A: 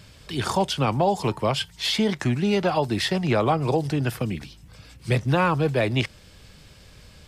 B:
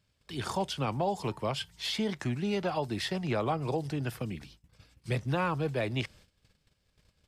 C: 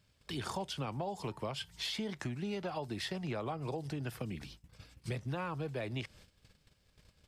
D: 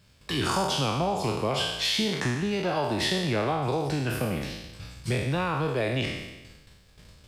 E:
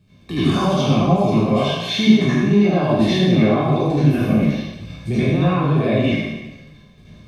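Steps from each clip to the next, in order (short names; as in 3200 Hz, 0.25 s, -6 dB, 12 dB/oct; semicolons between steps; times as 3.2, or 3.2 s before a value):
gate -45 dBFS, range -17 dB; gain -9 dB
compressor 4:1, threshold -40 dBFS, peak gain reduction 12.5 dB; gain +3 dB
spectral trails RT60 1.09 s; gain +9 dB
reverb RT60 0.55 s, pre-delay 74 ms, DRR -9.5 dB; gain -8.5 dB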